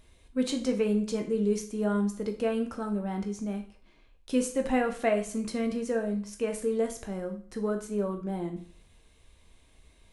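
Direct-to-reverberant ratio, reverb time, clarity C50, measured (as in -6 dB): 4.0 dB, 0.50 s, 10.5 dB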